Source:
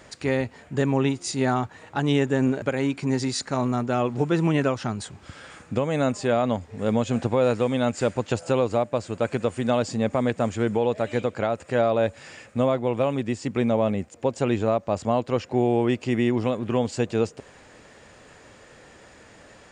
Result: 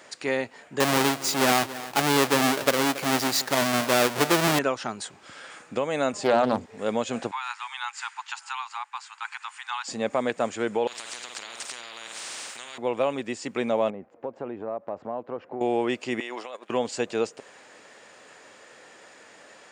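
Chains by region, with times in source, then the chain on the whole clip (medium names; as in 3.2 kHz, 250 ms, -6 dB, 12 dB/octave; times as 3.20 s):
0.80–4.59 s: square wave that keeps the level + delay 278 ms -16 dB
6.13–6.66 s: bass shelf 320 Hz +11 dB + hum notches 60/120/180/240/300/360/420/480 Hz + loudspeaker Doppler distortion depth 0.35 ms
7.31–9.88 s: steep high-pass 840 Hz 96 dB/octave + treble shelf 6.9 kHz -9 dB
10.87–12.78 s: flutter echo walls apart 8.7 m, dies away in 0.31 s + compression 4:1, threshold -32 dBFS + spectrum-flattening compressor 10:1
13.90–15.61 s: low-pass 1.1 kHz + compression 3:1, threshold -27 dBFS
16.20–16.70 s: gate -28 dBFS, range -13 dB + high-pass 630 Hz + compressor with a negative ratio -35 dBFS
whole clip: Bessel high-pass 210 Hz, order 2; bass shelf 270 Hz -11 dB; trim +1.5 dB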